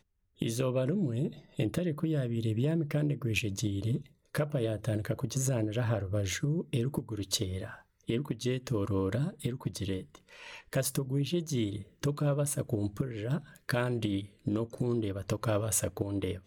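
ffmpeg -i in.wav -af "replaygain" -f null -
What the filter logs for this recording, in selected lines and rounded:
track_gain = +14.4 dB
track_peak = 0.123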